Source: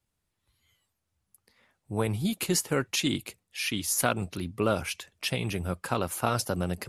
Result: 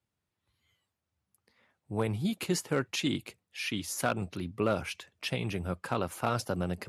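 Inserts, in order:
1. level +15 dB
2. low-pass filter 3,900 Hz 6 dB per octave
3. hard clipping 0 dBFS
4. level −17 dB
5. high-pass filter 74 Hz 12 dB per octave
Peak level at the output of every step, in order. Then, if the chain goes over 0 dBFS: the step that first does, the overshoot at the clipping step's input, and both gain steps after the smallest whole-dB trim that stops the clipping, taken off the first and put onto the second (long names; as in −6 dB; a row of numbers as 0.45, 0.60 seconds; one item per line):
+6.5, +6.0, 0.0, −17.0, −16.0 dBFS
step 1, 6.0 dB
step 1 +9 dB, step 4 −11 dB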